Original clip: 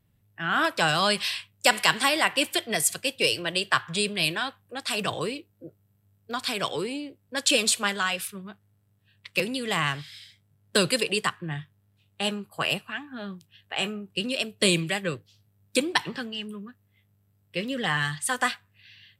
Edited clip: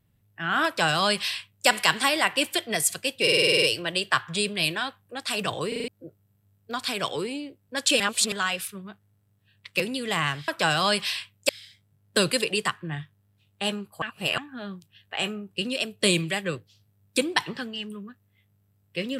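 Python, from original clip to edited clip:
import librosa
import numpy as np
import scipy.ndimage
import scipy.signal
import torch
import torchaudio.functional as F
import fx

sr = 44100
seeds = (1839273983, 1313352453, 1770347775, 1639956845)

y = fx.edit(x, sr, fx.duplicate(start_s=0.66, length_s=1.01, to_s=10.08),
    fx.stutter(start_s=3.22, slice_s=0.05, count=9),
    fx.stutter_over(start_s=5.28, slice_s=0.04, count=5),
    fx.reverse_span(start_s=7.6, length_s=0.32),
    fx.reverse_span(start_s=12.61, length_s=0.36), tone=tone)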